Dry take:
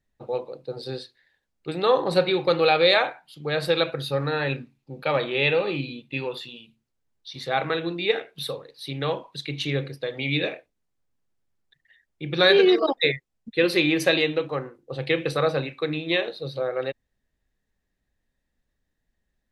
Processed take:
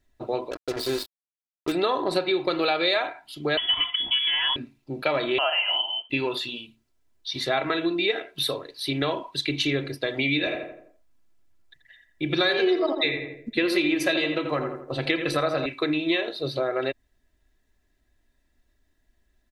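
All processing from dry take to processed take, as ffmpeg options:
ffmpeg -i in.wav -filter_complex "[0:a]asettb=1/sr,asplit=3[link_01][link_02][link_03];[link_01]atrim=end=0.514[link_04];[link_02]atrim=start=0.51:end=1.72,asetpts=PTS-STARTPTS,afade=type=in:duration=0.004:curve=qsin,afade=type=out:start_time=1.206:duration=0.004:curve=qsin,equalizer=frequency=140:width_type=o:width=0.41:gain=-6.5,acrusher=bits=5:mix=0:aa=0.5[link_05];[link_03]atrim=start=1.716[link_06];[link_04][link_05]acrossfade=duration=0.004:curve1=hsin:curve2=qsin[link_07];[link_07][link_06]acrossfade=duration=0.004:curve1=qsin:curve2=hsin,asettb=1/sr,asplit=3[link_08][link_09][link_10];[link_08]atrim=end=3.574[link_11];[link_09]atrim=start=3.57:end=4.56,asetpts=PTS-STARTPTS,afade=type=in:duration=0.004:curve=qsin,afade=type=out:start_time=0.986:duration=0.004:curve=qsin,aeval=exprs='(tanh(5.01*val(0)+0.25)-tanh(0.25))/5.01':channel_layout=same,lowpass=frequency=3000:width_type=q:width=0.5098,lowpass=frequency=3000:width_type=q:width=0.6013,lowpass=frequency=3000:width_type=q:width=0.9,lowpass=frequency=3000:width_type=q:width=2.563,afreqshift=-3500[link_12];[link_10]atrim=start=4.556[link_13];[link_11][link_12]acrossfade=duration=0.004:curve1=hsin:curve2=qsin[link_14];[link_14][link_13]acrossfade=duration=0.004:curve1=qsin:curve2=hsin,asettb=1/sr,asplit=3[link_15][link_16][link_17];[link_15]atrim=end=5.384[link_18];[link_16]atrim=start=5.38:end=6.1,asetpts=PTS-STARTPTS,afade=type=in:duration=0.004:curve=qsin,afade=type=out:start_time=0.716:duration=0.004:curve=qsin,lowpass=frequency=2800:width_type=q:width=0.5098,lowpass=frequency=2800:width_type=q:width=0.6013,lowpass=frequency=2800:width_type=q:width=0.9,lowpass=frequency=2800:width_type=q:width=2.563,afreqshift=-3300,highpass=frequency=390:width=0.5412,highpass=frequency=390:width=1.3066[link_19];[link_17]atrim=start=6.096[link_20];[link_18][link_19]acrossfade=duration=0.004:curve1=hsin:curve2=qsin[link_21];[link_21][link_20]acrossfade=duration=0.004:curve1=qsin:curve2=hsin,asettb=1/sr,asplit=3[link_22][link_23][link_24];[link_22]atrim=end=10.384[link_25];[link_23]atrim=start=10.38:end=15.66,asetpts=PTS-STARTPTS,afade=type=in:duration=0.004:curve=qsin,afade=type=out:start_time=5.276:duration=0.004:curve=qsin,bandreject=frequency=410:width=7.5,asplit=2[link_26][link_27];[link_27]adelay=84,lowpass=frequency=1900:poles=1,volume=-7dB,asplit=2[link_28][link_29];[link_29]adelay=84,lowpass=frequency=1900:poles=1,volume=0.46,asplit=2[link_30][link_31];[link_31]adelay=84,lowpass=frequency=1900:poles=1,volume=0.46,asplit=2[link_32][link_33];[link_33]adelay=84,lowpass=frequency=1900:poles=1,volume=0.46,asplit=2[link_34][link_35];[link_35]adelay=84,lowpass=frequency=1900:poles=1,volume=0.46[link_36];[link_26][link_28][link_30][link_32][link_34][link_36]amix=inputs=6:normalize=0,atrim=end_sample=232848[link_37];[link_24]atrim=start=15.656[link_38];[link_25][link_37]acrossfade=duration=0.004:curve1=hsin:curve2=qsin[link_39];[link_39][link_38]acrossfade=duration=0.004:curve1=qsin:curve2=hsin,aecho=1:1:3:0.61,acompressor=threshold=-28dB:ratio=4,volume=6dB" out.wav

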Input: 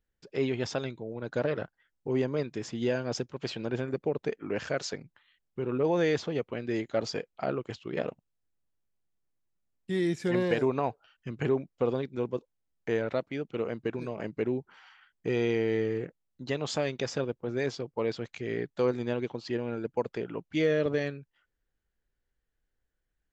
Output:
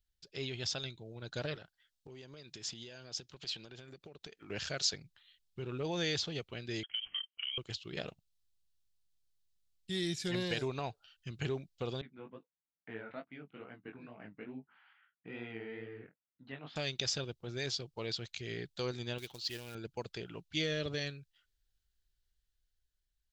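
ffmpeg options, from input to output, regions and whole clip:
ffmpeg -i in.wav -filter_complex "[0:a]asettb=1/sr,asplit=3[link_01][link_02][link_03];[link_01]atrim=end=1.554[link_04];[link_02]atrim=start=1.55:end=4.5,asetpts=PTS-STARTPTS,afade=type=in:duration=0.004:curve=qsin,afade=type=out:start_time=2.946:duration=0.004:curve=qsin,lowshelf=frequency=140:gain=-9,acompressor=threshold=-38dB:ratio=8:attack=3.2:release=140:knee=1:detection=peak[link_05];[link_03]atrim=start=4.496[link_06];[link_04][link_05]acrossfade=duration=0.004:curve1=hsin:curve2=qsin[link_07];[link_07][link_06]acrossfade=duration=0.004:curve1=qsin:curve2=hsin,asettb=1/sr,asplit=3[link_08][link_09][link_10];[link_08]atrim=end=6.834[link_11];[link_09]atrim=start=6.83:end=7.58,asetpts=PTS-STARTPTS,afade=type=in:duration=0.004:curve=qsin,afade=type=out:start_time=0.746:duration=0.004:curve=qsin,highpass=frequency=410:width=0.5412,highpass=frequency=410:width=1.3066,acompressor=threshold=-36dB:ratio=16:attack=3.2:release=140:knee=1:detection=peak,lowpass=frequency=3100:width_type=q:width=0.5098,lowpass=frequency=3100:width_type=q:width=0.6013,lowpass=frequency=3100:width_type=q:width=0.9,lowpass=frequency=3100:width_type=q:width=2.563,afreqshift=-3600[link_12];[link_10]atrim=start=7.576[link_13];[link_11][link_12]acrossfade=duration=0.004:curve1=hsin:curve2=qsin[link_14];[link_14][link_13]acrossfade=duration=0.004:curve1=qsin:curve2=hsin,asettb=1/sr,asplit=3[link_15][link_16][link_17];[link_15]atrim=end=12.014[link_18];[link_16]atrim=start=12.01:end=16.76,asetpts=PTS-STARTPTS,afade=type=in:duration=0.004:curve=qsin,afade=type=out:start_time=4.746:duration=0.004:curve=qsin,highpass=210,equalizer=frequency=260:width_type=q:width=4:gain=6,equalizer=frequency=380:width_type=q:width=4:gain=-9,equalizer=frequency=540:width_type=q:width=4:gain=-5,lowpass=frequency=2100:width=0.5412,lowpass=frequency=2100:width=1.3066,asplit=2[link_19][link_20];[link_20]adelay=20,volume=-14dB[link_21];[link_19][link_21]amix=inputs=2:normalize=0,atrim=end_sample=209475,flanger=delay=15.5:depth=6.9:speed=2.3[link_22];[link_17]atrim=start=16.756[link_23];[link_18][link_22]acrossfade=duration=0.004:curve1=hsin:curve2=qsin[link_24];[link_24][link_23]acrossfade=duration=0.004:curve1=qsin:curve2=hsin,asettb=1/sr,asplit=3[link_25][link_26][link_27];[link_25]atrim=end=19.184[link_28];[link_26]atrim=start=19.18:end=19.75,asetpts=PTS-STARTPTS,afade=type=in:duration=0.004:curve=qsin,afade=type=out:start_time=0.566:duration=0.004:curve=qsin,equalizer=frequency=190:width=0.32:gain=-7,acrusher=bits=5:mode=log:mix=0:aa=0.000001[link_29];[link_27]atrim=start=19.746[link_30];[link_28][link_29]acrossfade=duration=0.004:curve1=hsin:curve2=qsin[link_31];[link_31][link_30]acrossfade=duration=0.004:curve1=qsin:curve2=hsin,equalizer=frequency=125:width_type=o:width=1:gain=-4,equalizer=frequency=250:width_type=o:width=1:gain=-12,equalizer=frequency=500:width_type=o:width=1:gain=-11,equalizer=frequency=1000:width_type=o:width=1:gain=-10,equalizer=frequency=2000:width_type=o:width=1:gain=-7,equalizer=frequency=4000:width_type=o:width=1:gain=7,dynaudnorm=framelen=180:gausssize=11:maxgain=3dB" out.wav

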